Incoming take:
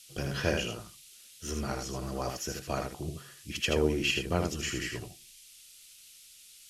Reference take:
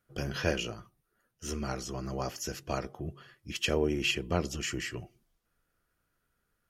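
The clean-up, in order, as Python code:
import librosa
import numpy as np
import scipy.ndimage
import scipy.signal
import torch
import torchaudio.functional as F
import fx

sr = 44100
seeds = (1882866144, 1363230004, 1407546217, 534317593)

y = fx.noise_reduce(x, sr, print_start_s=5.93, print_end_s=6.43, reduce_db=24.0)
y = fx.fix_echo_inverse(y, sr, delay_ms=79, level_db=-5.5)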